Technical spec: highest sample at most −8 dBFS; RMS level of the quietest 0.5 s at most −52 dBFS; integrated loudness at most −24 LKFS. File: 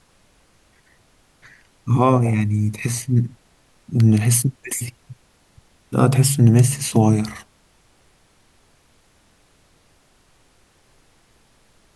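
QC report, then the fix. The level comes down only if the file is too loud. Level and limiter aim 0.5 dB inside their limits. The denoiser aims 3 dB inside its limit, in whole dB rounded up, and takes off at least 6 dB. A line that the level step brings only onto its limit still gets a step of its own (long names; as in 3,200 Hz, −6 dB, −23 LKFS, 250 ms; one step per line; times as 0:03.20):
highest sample −3.5 dBFS: out of spec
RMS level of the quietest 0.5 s −58 dBFS: in spec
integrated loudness −18.5 LKFS: out of spec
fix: level −6 dB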